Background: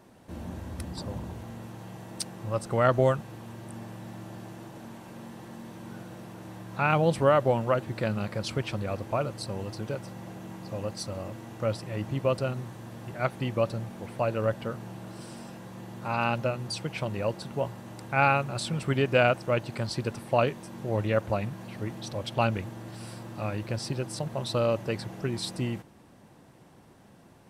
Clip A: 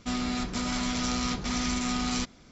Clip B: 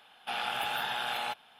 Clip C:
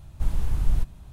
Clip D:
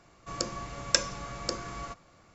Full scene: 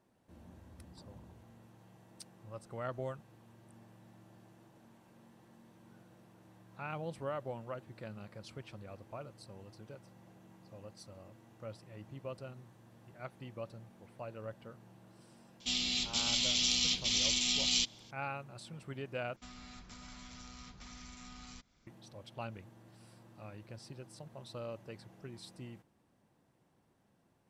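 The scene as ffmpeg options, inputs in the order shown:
-filter_complex "[1:a]asplit=2[s0][s1];[0:a]volume=0.133[s2];[s0]highshelf=f=2100:t=q:w=3:g=14[s3];[s1]acrossover=split=180|650[s4][s5][s6];[s4]acompressor=threshold=0.0141:ratio=4[s7];[s5]acompressor=threshold=0.00251:ratio=4[s8];[s6]acompressor=threshold=0.0126:ratio=4[s9];[s7][s8][s9]amix=inputs=3:normalize=0[s10];[s2]asplit=2[s11][s12];[s11]atrim=end=19.364[s13];[s10]atrim=end=2.51,asetpts=PTS-STARTPTS,volume=0.188[s14];[s12]atrim=start=21.866[s15];[s3]atrim=end=2.51,asetpts=PTS-STARTPTS,volume=0.211,afade=t=in:d=0.004:c=hsin,afade=t=out:st=2.506:d=0.004:c=hsin,adelay=15600[s16];[s13][s14]acrossfade=d=0.004:c1=hsin:c2=hsin[s17];[s17][s15]acrossfade=d=0.004:c1=hsin:c2=hsin[s18];[s18][s16]amix=inputs=2:normalize=0"

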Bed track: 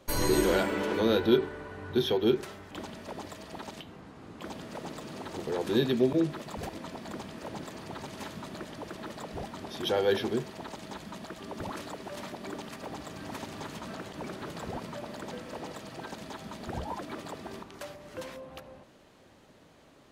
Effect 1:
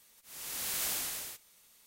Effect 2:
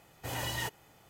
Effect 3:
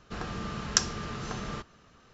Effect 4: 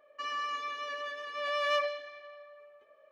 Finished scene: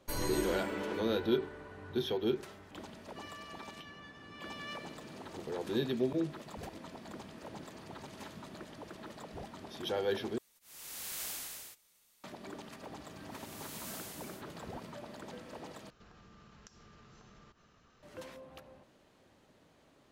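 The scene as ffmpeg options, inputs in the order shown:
-filter_complex "[1:a]asplit=2[s0][s1];[0:a]volume=0.447[s2];[4:a]highpass=1500[s3];[3:a]acompressor=threshold=0.00355:ratio=6:attack=3.2:release=140:knee=1:detection=peak[s4];[s2]asplit=3[s5][s6][s7];[s5]atrim=end=10.384[s8];[s0]atrim=end=1.86,asetpts=PTS-STARTPTS,volume=0.473[s9];[s6]atrim=start=12.236:end=15.904[s10];[s4]atrim=end=2.13,asetpts=PTS-STARTPTS,volume=0.447[s11];[s7]atrim=start=18.026[s12];[s3]atrim=end=3.11,asetpts=PTS-STARTPTS,volume=0.282,afade=t=in:d=0.004:c=hsin,afade=t=out:st=3.106:d=0.004:c=hsin,adelay=2970[s13];[s1]atrim=end=1.86,asetpts=PTS-STARTPTS,volume=0.251,afade=t=in:d=0.004:c=hsin,afade=t=out:st=1.856:d=0.004:c=hsin,adelay=13050[s14];[s8][s9]acrossfade=d=0.004:c1=hsin:c2=hsin[s15];[s15][s10]acrossfade=d=0.004:c1=hsin:c2=hsin[s16];[s16][s11]acrossfade=d=0.004:c1=hsin:c2=hsin[s17];[s17][s12]acrossfade=d=0.004:c1=hsin:c2=hsin[s18];[s18][s13][s14]amix=inputs=3:normalize=0"

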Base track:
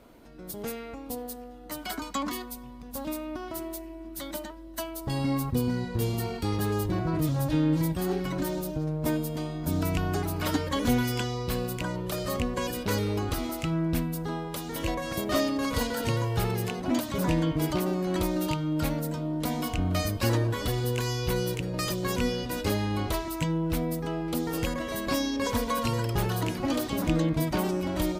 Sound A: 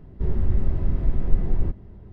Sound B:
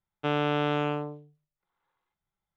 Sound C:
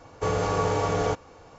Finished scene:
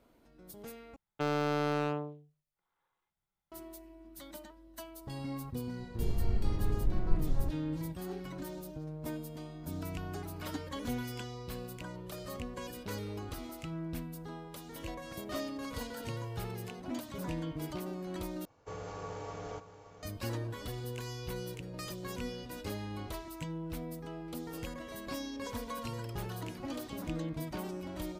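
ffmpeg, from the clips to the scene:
-filter_complex "[0:a]volume=0.251[s0];[2:a]asoftclip=type=hard:threshold=0.075[s1];[3:a]aecho=1:1:573:0.237[s2];[s0]asplit=3[s3][s4][s5];[s3]atrim=end=0.964[s6];[s1]atrim=end=2.56,asetpts=PTS-STARTPTS,volume=0.75[s7];[s4]atrim=start=3.516:end=18.454[s8];[s2]atrim=end=1.58,asetpts=PTS-STARTPTS,volume=0.133[s9];[s5]atrim=start=20.026[s10];[1:a]atrim=end=2.12,asetpts=PTS-STARTPTS,volume=0.335,afade=t=in:d=0.004:c=hsin,afade=t=out:st=2.116:d=0.004:c=hsin,adelay=5790[s11];[s6][s7]acrossfade=d=0.004:c1=hsin:c2=hsin[s12];[s12][s8]acrossfade=d=0.004:c1=hsin:c2=hsin[s13];[s13][s9]acrossfade=d=0.004:c1=hsin:c2=hsin[s14];[s14][s10]acrossfade=d=0.004:c1=hsin:c2=hsin[s15];[s15][s11]amix=inputs=2:normalize=0"

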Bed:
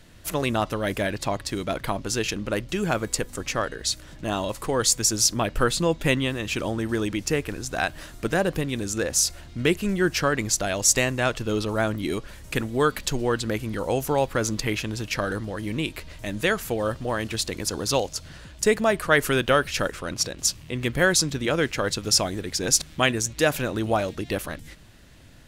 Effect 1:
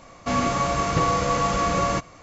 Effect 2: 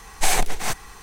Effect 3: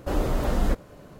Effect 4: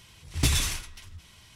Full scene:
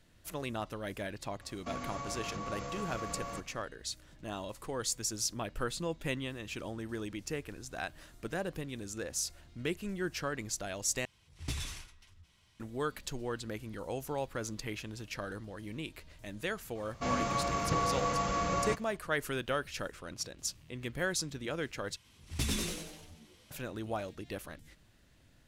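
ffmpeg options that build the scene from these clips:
-filter_complex "[1:a]asplit=2[s0][s1];[4:a]asplit=2[s2][s3];[0:a]volume=0.211[s4];[s0]acompressor=threshold=0.0562:ratio=6:attack=3.2:release=140:knee=1:detection=peak[s5];[s2]highshelf=f=11000:g=-9[s6];[s3]asplit=7[s7][s8][s9][s10][s11][s12][s13];[s8]adelay=95,afreqshift=140,volume=0.631[s14];[s9]adelay=190,afreqshift=280,volume=0.292[s15];[s10]adelay=285,afreqshift=420,volume=0.133[s16];[s11]adelay=380,afreqshift=560,volume=0.0617[s17];[s12]adelay=475,afreqshift=700,volume=0.0282[s18];[s13]adelay=570,afreqshift=840,volume=0.013[s19];[s7][s14][s15][s16][s17][s18][s19]amix=inputs=7:normalize=0[s20];[s4]asplit=3[s21][s22][s23];[s21]atrim=end=11.054[s24];[s6]atrim=end=1.55,asetpts=PTS-STARTPTS,volume=0.211[s25];[s22]atrim=start=12.596:end=21.964[s26];[s20]atrim=end=1.55,asetpts=PTS-STARTPTS,volume=0.299[s27];[s23]atrim=start=23.506[s28];[s5]atrim=end=2.22,asetpts=PTS-STARTPTS,volume=0.251,afade=t=in:d=0.004:c=hsin,afade=t=out:st=2.216:d=0.004:c=hsin,adelay=1400[s29];[s1]atrim=end=2.22,asetpts=PTS-STARTPTS,volume=0.335,afade=t=in:d=0.004:c=hsin,afade=t=out:st=2.216:d=0.004:c=hsin,adelay=16750[s30];[s24][s25]acrossfade=d=0.004:c1=hsin:c2=hsin[s31];[s31][s26]acrossfade=d=0.004:c1=hsin:c2=hsin[s32];[s32][s27]acrossfade=d=0.004:c1=hsin:c2=hsin[s33];[s33][s28]acrossfade=d=0.004:c1=hsin:c2=hsin[s34];[s34][s29][s30]amix=inputs=3:normalize=0"

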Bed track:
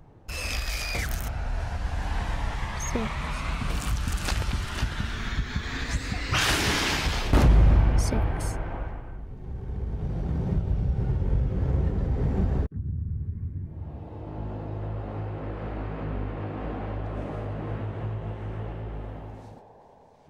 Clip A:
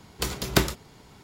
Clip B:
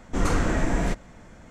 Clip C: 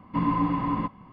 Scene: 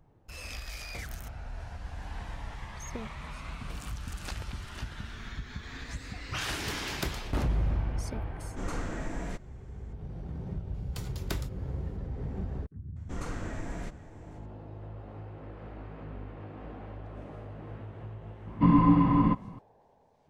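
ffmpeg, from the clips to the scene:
-filter_complex "[1:a]asplit=2[s0][s1];[2:a]asplit=2[s2][s3];[0:a]volume=0.299[s4];[s3]aecho=1:1:487:0.141[s5];[3:a]lowshelf=f=350:g=9.5[s6];[s0]atrim=end=1.23,asetpts=PTS-STARTPTS,volume=0.2,afade=t=in:d=0.004:c=hsin,afade=t=out:st=1.226:d=0.004:c=hsin,adelay=6460[s7];[s2]atrim=end=1.5,asetpts=PTS-STARTPTS,volume=0.251,afade=t=in:d=0.004:c=hsin,afade=t=out:st=1.496:d=0.004:c=hsin,adelay=8430[s8];[s1]atrim=end=1.23,asetpts=PTS-STARTPTS,volume=0.168,afade=t=in:d=0.004:c=hsin,afade=t=out:st=1.226:d=0.004:c=hsin,adelay=473634S[s9];[s5]atrim=end=1.5,asetpts=PTS-STARTPTS,volume=0.2,afade=t=in:d=0.004:c=hsin,afade=t=out:st=1.496:d=0.004:c=hsin,adelay=12960[s10];[s6]atrim=end=1.12,asetpts=PTS-STARTPTS,volume=0.841,afade=t=in:d=0.004:c=hsin,afade=t=out:st=1.116:d=0.004:c=hsin,adelay=18470[s11];[s4][s7][s8][s9][s10][s11]amix=inputs=6:normalize=0"

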